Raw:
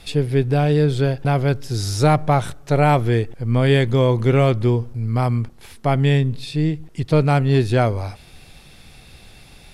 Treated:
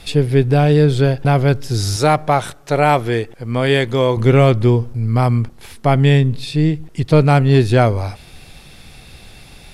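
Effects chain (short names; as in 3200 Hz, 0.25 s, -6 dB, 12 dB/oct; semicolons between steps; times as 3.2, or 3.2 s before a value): 1.96–4.17 low shelf 210 Hz -11.5 dB; gain +4.5 dB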